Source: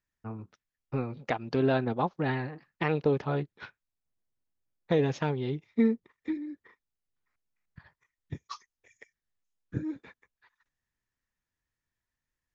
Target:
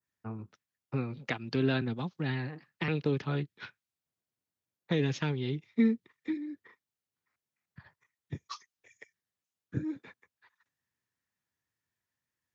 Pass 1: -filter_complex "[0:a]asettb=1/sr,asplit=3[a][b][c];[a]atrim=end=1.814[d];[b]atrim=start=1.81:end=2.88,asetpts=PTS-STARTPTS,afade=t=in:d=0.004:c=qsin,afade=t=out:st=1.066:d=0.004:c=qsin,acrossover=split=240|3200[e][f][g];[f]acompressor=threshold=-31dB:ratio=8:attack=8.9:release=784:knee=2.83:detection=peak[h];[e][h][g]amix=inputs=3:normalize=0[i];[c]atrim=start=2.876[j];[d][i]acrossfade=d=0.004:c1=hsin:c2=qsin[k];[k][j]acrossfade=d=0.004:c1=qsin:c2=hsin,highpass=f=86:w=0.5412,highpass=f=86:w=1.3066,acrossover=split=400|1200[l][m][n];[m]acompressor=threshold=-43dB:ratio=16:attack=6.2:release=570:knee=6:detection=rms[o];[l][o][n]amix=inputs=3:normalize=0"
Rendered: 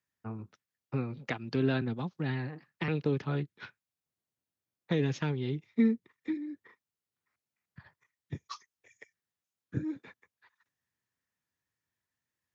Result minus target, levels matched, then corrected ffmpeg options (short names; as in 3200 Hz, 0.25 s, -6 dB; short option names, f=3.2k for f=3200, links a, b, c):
4000 Hz band -3.0 dB
-filter_complex "[0:a]asettb=1/sr,asplit=3[a][b][c];[a]atrim=end=1.814[d];[b]atrim=start=1.81:end=2.88,asetpts=PTS-STARTPTS,afade=t=in:d=0.004:c=qsin,afade=t=out:st=1.066:d=0.004:c=qsin,acrossover=split=240|3200[e][f][g];[f]acompressor=threshold=-31dB:ratio=8:attack=8.9:release=784:knee=2.83:detection=peak[h];[e][h][g]amix=inputs=3:normalize=0[i];[c]atrim=start=2.876[j];[d][i]acrossfade=d=0.004:c1=hsin:c2=qsin[k];[k][j]acrossfade=d=0.004:c1=qsin:c2=hsin,highpass=f=86:w=0.5412,highpass=f=86:w=1.3066,adynamicequalizer=threshold=0.00398:dfrequency=3600:dqfactor=0.71:tfrequency=3600:tqfactor=0.71:attack=5:release=100:ratio=0.438:range=2:mode=boostabove:tftype=bell,acrossover=split=400|1200[l][m][n];[m]acompressor=threshold=-43dB:ratio=16:attack=6.2:release=570:knee=6:detection=rms[o];[l][o][n]amix=inputs=3:normalize=0"